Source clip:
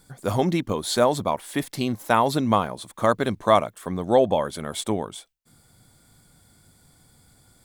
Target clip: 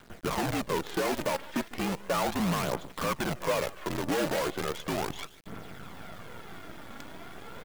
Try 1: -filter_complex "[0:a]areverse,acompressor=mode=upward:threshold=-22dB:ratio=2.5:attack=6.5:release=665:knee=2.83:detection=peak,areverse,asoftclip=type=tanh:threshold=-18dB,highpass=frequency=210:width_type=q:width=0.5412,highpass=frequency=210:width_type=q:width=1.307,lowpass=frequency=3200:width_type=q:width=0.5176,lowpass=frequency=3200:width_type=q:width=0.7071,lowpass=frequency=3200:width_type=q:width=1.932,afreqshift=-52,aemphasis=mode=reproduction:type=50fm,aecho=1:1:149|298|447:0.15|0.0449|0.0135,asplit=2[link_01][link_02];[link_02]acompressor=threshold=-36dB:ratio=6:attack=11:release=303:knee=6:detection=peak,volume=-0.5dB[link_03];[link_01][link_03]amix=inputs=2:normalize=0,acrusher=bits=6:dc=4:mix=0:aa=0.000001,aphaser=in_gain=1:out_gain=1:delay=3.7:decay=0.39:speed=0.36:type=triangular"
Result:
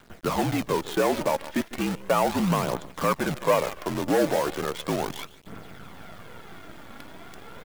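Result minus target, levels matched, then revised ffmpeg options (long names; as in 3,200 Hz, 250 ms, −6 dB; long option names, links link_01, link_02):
soft clipping: distortion −7 dB
-filter_complex "[0:a]areverse,acompressor=mode=upward:threshold=-22dB:ratio=2.5:attack=6.5:release=665:knee=2.83:detection=peak,areverse,asoftclip=type=tanh:threshold=-29.5dB,highpass=frequency=210:width_type=q:width=0.5412,highpass=frequency=210:width_type=q:width=1.307,lowpass=frequency=3200:width_type=q:width=0.5176,lowpass=frequency=3200:width_type=q:width=0.7071,lowpass=frequency=3200:width_type=q:width=1.932,afreqshift=-52,aemphasis=mode=reproduction:type=50fm,aecho=1:1:149|298|447:0.15|0.0449|0.0135,asplit=2[link_01][link_02];[link_02]acompressor=threshold=-36dB:ratio=6:attack=11:release=303:knee=6:detection=peak,volume=-0.5dB[link_03];[link_01][link_03]amix=inputs=2:normalize=0,acrusher=bits=6:dc=4:mix=0:aa=0.000001,aphaser=in_gain=1:out_gain=1:delay=3.7:decay=0.39:speed=0.36:type=triangular"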